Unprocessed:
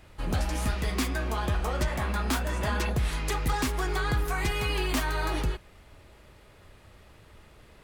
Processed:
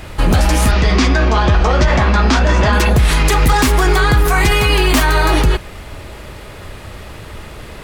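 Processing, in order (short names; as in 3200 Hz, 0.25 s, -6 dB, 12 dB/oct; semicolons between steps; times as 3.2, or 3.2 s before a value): 0.71–2.73 Chebyshev low-pass 5900 Hz, order 3; maximiser +25 dB; gain -3.5 dB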